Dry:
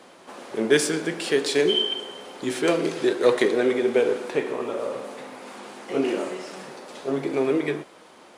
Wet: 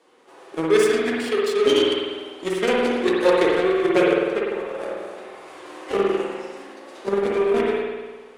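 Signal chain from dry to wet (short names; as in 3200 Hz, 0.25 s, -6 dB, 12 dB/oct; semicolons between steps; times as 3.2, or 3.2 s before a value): recorder AGC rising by 5.5 dB/s; formant-preserving pitch shift +6.5 st; added harmonics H 7 -20 dB, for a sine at -7.5 dBFS; spring tank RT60 1.4 s, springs 50 ms, chirp 55 ms, DRR -3 dB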